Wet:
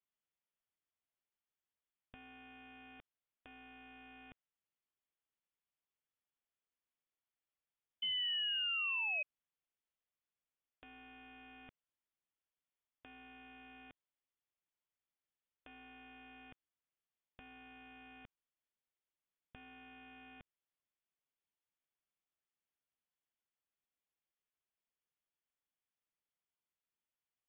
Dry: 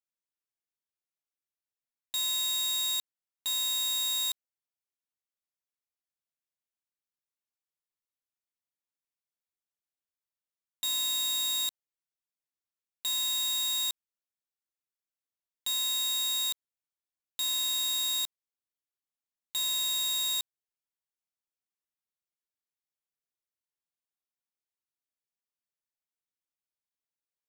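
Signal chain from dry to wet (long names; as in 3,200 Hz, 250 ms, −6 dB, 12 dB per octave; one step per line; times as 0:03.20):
sound drawn into the spectrogram rise, 0:08.02–0:09.23, 460–980 Hz −34 dBFS
gain into a clipping stage and back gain 35.5 dB
voice inversion scrambler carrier 3,500 Hz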